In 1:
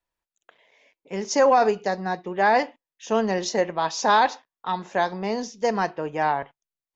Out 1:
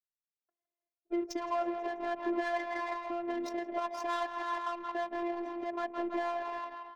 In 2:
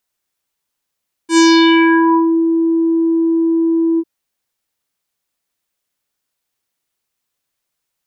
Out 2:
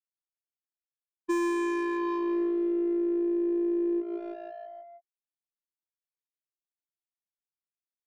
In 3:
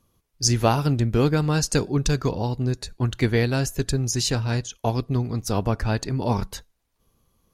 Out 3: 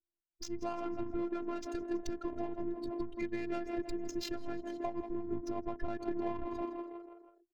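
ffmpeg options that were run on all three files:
-filter_complex "[0:a]highpass=40,afftdn=noise_reduction=28:noise_floor=-28,asplit=2[link_01][link_02];[link_02]asplit=6[link_03][link_04][link_05][link_06][link_07][link_08];[link_03]adelay=162,afreqshift=57,volume=-13dB[link_09];[link_04]adelay=324,afreqshift=114,volume=-17.7dB[link_10];[link_05]adelay=486,afreqshift=171,volume=-22.5dB[link_11];[link_06]adelay=648,afreqshift=228,volume=-27.2dB[link_12];[link_07]adelay=810,afreqshift=285,volume=-31.9dB[link_13];[link_08]adelay=972,afreqshift=342,volume=-36.7dB[link_14];[link_09][link_10][link_11][link_12][link_13][link_14]amix=inputs=6:normalize=0[link_15];[link_01][link_15]amix=inputs=2:normalize=0,acompressor=threshold=-28dB:ratio=8,alimiter=level_in=0.5dB:limit=-24dB:level=0:latency=1:release=186,volume=-0.5dB,adynamicsmooth=sensitivity=7:basefreq=780,afftfilt=real='hypot(re,im)*cos(PI*b)':imag='0':win_size=512:overlap=0.75,adynamicequalizer=threshold=0.00141:dfrequency=2300:dqfactor=2:tfrequency=2300:tqfactor=2:attack=5:release=100:ratio=0.375:range=2:mode=boostabove:tftype=bell,volume=4dB"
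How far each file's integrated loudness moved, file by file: −12.5, −15.5, −15.5 LU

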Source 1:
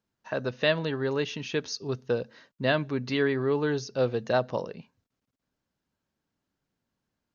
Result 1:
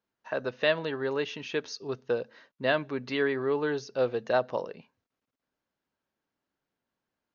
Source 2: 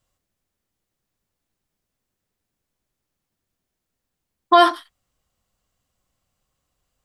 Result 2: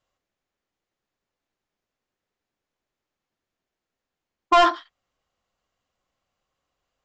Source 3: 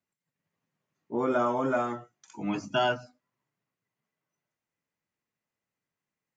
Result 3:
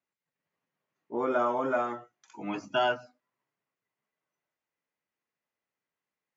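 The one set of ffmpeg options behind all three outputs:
-af "bass=frequency=250:gain=-10,treble=frequency=4000:gain=-7,aresample=16000,asoftclip=type=hard:threshold=-11dB,aresample=44100"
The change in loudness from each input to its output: −1.5, −3.0, −1.0 LU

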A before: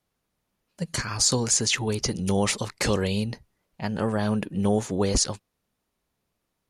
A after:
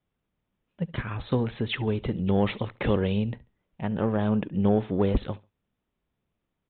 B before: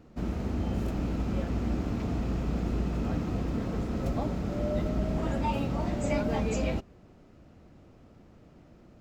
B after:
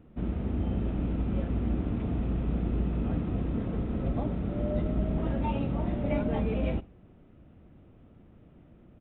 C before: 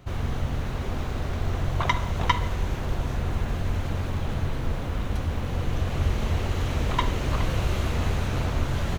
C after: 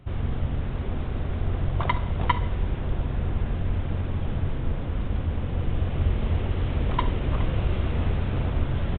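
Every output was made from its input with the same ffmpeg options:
-filter_complex "[0:a]asplit=2[link_01][link_02];[link_02]adynamicsmooth=sensitivity=0.5:basefreq=530,volume=-2dB[link_03];[link_01][link_03]amix=inputs=2:normalize=0,aecho=1:1:70|140:0.0794|0.0191,aresample=8000,aresample=44100,volume=-4dB"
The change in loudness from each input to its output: −2.5, +0.5, 0.0 LU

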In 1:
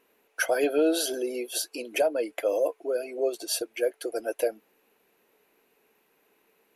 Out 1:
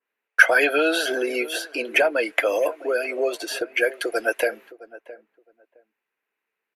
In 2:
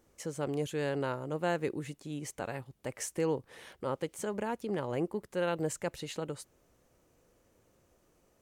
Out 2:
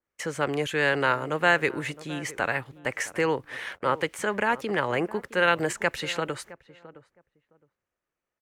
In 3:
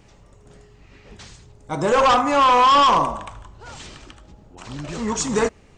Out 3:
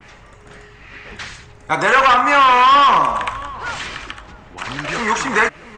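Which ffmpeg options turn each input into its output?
-filter_complex "[0:a]acrossover=split=320|870|2400[link_01][link_02][link_03][link_04];[link_01]acompressor=threshold=-36dB:ratio=4[link_05];[link_02]acompressor=threshold=-31dB:ratio=4[link_06];[link_03]acompressor=threshold=-28dB:ratio=4[link_07];[link_04]acompressor=threshold=-42dB:ratio=4[link_08];[link_05][link_06][link_07][link_08]amix=inputs=4:normalize=0,agate=range=-28dB:threshold=-55dB:ratio=16:detection=peak,equalizer=frequency=1800:width_type=o:width=2:gain=14.5,asplit=2[link_09][link_10];[link_10]adelay=664,lowpass=frequency=1000:poles=1,volume=-16.5dB,asplit=2[link_11][link_12];[link_12]adelay=664,lowpass=frequency=1000:poles=1,volume=0.19[link_13];[link_11][link_13]amix=inputs=2:normalize=0[link_14];[link_09][link_14]amix=inputs=2:normalize=0,adynamicequalizer=threshold=0.0355:dfrequency=2500:dqfactor=0.7:tfrequency=2500:tqfactor=0.7:attack=5:release=100:ratio=0.375:range=1.5:mode=boostabove:tftype=highshelf,volume=4dB"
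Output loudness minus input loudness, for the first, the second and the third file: +6.5, +9.0, +3.0 LU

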